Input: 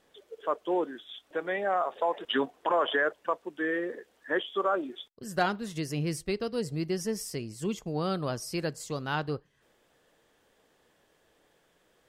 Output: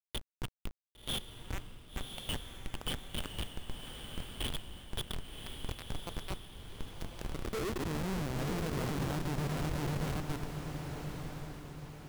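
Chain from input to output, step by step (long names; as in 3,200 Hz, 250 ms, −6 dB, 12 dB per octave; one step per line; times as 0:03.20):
feedback delay that plays each chunk backwards 253 ms, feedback 62%, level −8.5 dB
graphic EQ with 15 bands 100 Hz −6 dB, 1,000 Hz −9 dB, 10,000 Hz −10 dB
downward compressor 8 to 1, threshold −43 dBFS, peak gain reduction 19 dB
brickwall limiter −40.5 dBFS, peak gain reduction 10 dB
high-pass filter sweep 2,700 Hz → 120 Hz, 0:06.63–0:08.24
comparator with hysteresis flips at −45.5 dBFS
log-companded quantiser 6 bits
on a send: feedback delay with all-pass diffusion 1,090 ms, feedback 44%, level −5.5 dB
on the sum: level +17 dB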